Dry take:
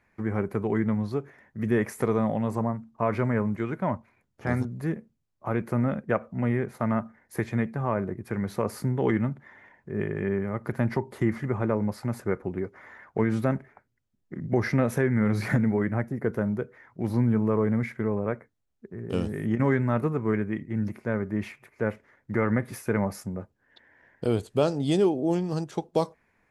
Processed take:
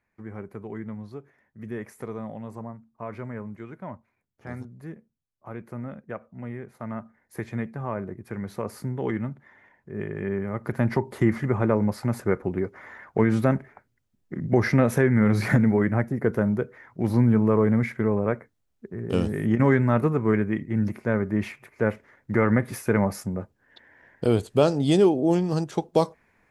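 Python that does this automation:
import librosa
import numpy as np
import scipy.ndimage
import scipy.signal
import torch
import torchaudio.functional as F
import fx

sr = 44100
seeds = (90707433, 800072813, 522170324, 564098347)

y = fx.gain(x, sr, db=fx.line((6.62, -10.0), (7.51, -3.5), (9.9, -3.5), (11.08, 4.0)))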